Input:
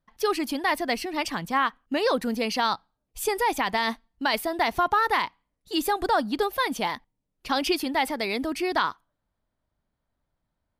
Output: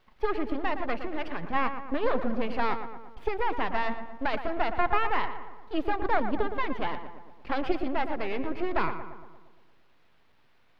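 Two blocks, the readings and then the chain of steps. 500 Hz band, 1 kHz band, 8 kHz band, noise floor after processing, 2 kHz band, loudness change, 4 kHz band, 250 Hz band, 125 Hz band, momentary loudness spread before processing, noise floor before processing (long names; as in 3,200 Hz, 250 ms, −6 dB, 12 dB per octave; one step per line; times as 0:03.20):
−3.0 dB, −4.5 dB, below −30 dB, −60 dBFS, −5.5 dB, −5.0 dB, −13.0 dB, −3.5 dB, +1.5 dB, 6 LU, −81 dBFS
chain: high-shelf EQ 3,600 Hz −11 dB
in parallel at −7 dB: bit-depth reduction 8 bits, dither triangular
on the sum: half-wave rectification
high-frequency loss of the air 360 metres
feedback echo with a low-pass in the loop 116 ms, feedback 58%, low-pass 2,100 Hz, level −9 dB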